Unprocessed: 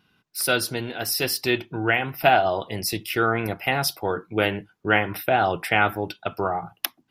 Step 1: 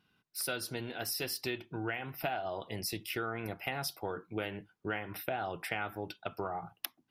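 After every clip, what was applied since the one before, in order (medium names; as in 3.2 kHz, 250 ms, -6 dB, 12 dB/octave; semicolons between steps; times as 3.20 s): compression 6:1, threshold -24 dBFS, peak gain reduction 11.5 dB; trim -8.5 dB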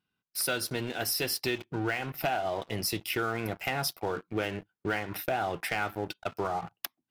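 waveshaping leveller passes 3; trim -5 dB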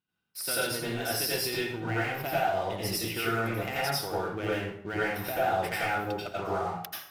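plate-style reverb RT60 0.63 s, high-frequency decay 0.75×, pre-delay 75 ms, DRR -7.5 dB; trim -6.5 dB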